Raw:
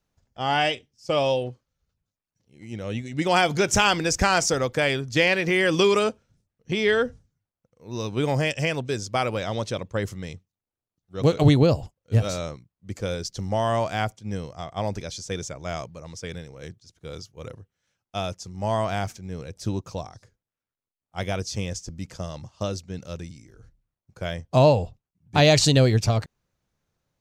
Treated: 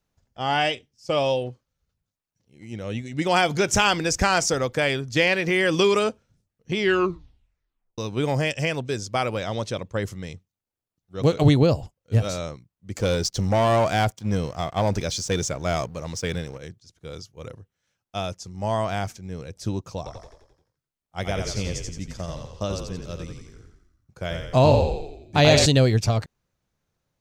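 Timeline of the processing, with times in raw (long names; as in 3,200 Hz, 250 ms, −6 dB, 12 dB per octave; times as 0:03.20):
0:06.77: tape stop 1.21 s
0:12.96–0:16.58: leveller curve on the samples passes 2
0:19.97–0:25.66: echo with shifted repeats 87 ms, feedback 53%, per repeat −35 Hz, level −5 dB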